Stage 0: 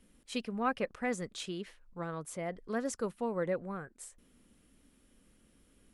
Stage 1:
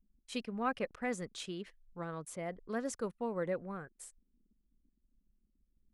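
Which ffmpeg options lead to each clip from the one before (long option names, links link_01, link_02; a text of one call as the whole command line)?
ffmpeg -i in.wav -af "anlmdn=0.000631,volume=-2.5dB" out.wav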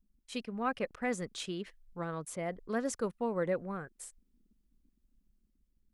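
ffmpeg -i in.wav -af "dynaudnorm=framelen=360:gausssize=5:maxgain=3.5dB" out.wav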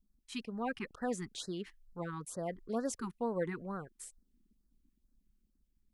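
ffmpeg -i in.wav -af "afftfilt=real='re*(1-between(b*sr/1024,530*pow(2800/530,0.5+0.5*sin(2*PI*2.2*pts/sr))/1.41,530*pow(2800/530,0.5+0.5*sin(2*PI*2.2*pts/sr))*1.41))':imag='im*(1-between(b*sr/1024,530*pow(2800/530,0.5+0.5*sin(2*PI*2.2*pts/sr))/1.41,530*pow(2800/530,0.5+0.5*sin(2*PI*2.2*pts/sr))*1.41))':win_size=1024:overlap=0.75,volume=-1.5dB" out.wav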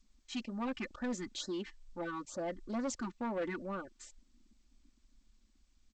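ffmpeg -i in.wav -af "aecho=1:1:3.4:0.97,asoftclip=type=tanh:threshold=-32.5dB,volume=1dB" -ar 16000 -c:a g722 out.g722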